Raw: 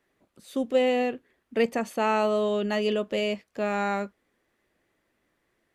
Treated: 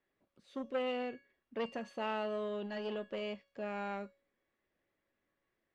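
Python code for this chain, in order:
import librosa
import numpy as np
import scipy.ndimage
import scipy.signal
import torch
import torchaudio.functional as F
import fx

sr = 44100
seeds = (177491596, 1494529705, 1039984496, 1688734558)

y = scipy.signal.sosfilt(scipy.signal.butter(2, 4300.0, 'lowpass', fs=sr, output='sos'), x)
y = fx.comb_fb(y, sr, f0_hz=560.0, decay_s=0.47, harmonics='all', damping=0.0, mix_pct=80)
y = fx.transformer_sat(y, sr, knee_hz=840.0)
y = F.gain(torch.from_numpy(y), 2.0).numpy()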